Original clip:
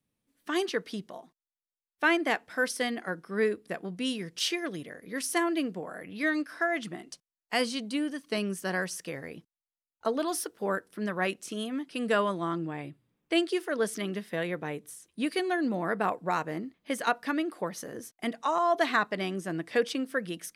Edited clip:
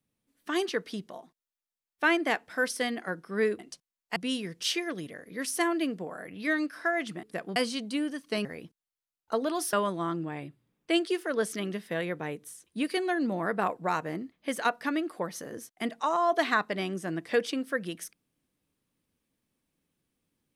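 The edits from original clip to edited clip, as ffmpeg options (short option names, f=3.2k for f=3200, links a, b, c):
-filter_complex "[0:a]asplit=7[a][b][c][d][e][f][g];[a]atrim=end=3.592[h];[b]atrim=start=6.988:end=7.562[i];[c]atrim=start=3.918:end=6.992[j];[d]atrim=start=3.588:end=3.922[k];[e]atrim=start=7.558:end=8.452[l];[f]atrim=start=9.178:end=10.462[m];[g]atrim=start=12.148[n];[h][i]acrossfade=d=0.004:c1=hsin:c2=hsin[o];[o][j]acrossfade=d=0.004:c1=hsin:c2=hsin[p];[p][k]acrossfade=d=0.004:c1=hsin:c2=hsin[q];[q][l]acrossfade=d=0.004:c1=hsin:c2=hsin[r];[r][m]acrossfade=d=0.004:c1=hsin:c2=hsin[s];[s][n]acrossfade=d=0.004:c1=hsin:c2=hsin"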